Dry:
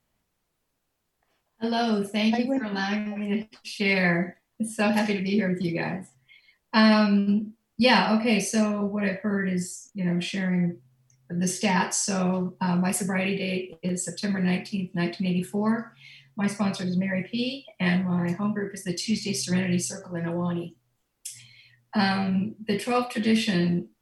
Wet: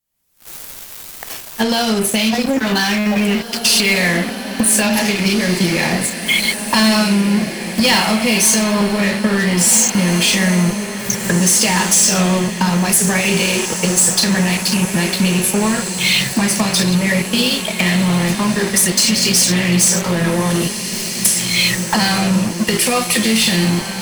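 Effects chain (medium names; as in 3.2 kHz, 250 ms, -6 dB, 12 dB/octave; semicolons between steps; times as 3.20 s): recorder AGC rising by 62 dB/s; pre-emphasis filter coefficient 0.8; in parallel at +2.5 dB: compression 6:1, threshold -44 dBFS, peak gain reduction 26 dB; on the sum: waveshaping leveller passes 5; saturation -8 dBFS, distortion -17 dB; on a send: echo that smears into a reverb 1935 ms, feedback 53%, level -8.5 dB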